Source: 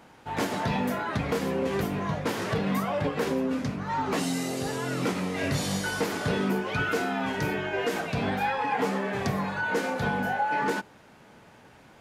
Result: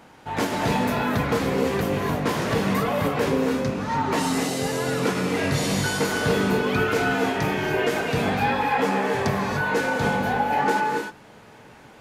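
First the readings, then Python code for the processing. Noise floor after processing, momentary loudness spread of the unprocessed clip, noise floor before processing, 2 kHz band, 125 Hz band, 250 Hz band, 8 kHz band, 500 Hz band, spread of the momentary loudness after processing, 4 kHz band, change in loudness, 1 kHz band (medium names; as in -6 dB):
-48 dBFS, 3 LU, -54 dBFS, +5.0 dB, +5.0 dB, +4.5 dB, +5.5 dB, +6.0 dB, 3 LU, +5.5 dB, +5.0 dB, +5.5 dB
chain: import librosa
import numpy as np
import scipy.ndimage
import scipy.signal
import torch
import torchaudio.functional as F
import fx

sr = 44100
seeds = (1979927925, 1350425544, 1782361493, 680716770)

y = fx.rev_gated(x, sr, seeds[0], gate_ms=320, shape='rising', drr_db=2.5)
y = F.gain(torch.from_numpy(y), 3.5).numpy()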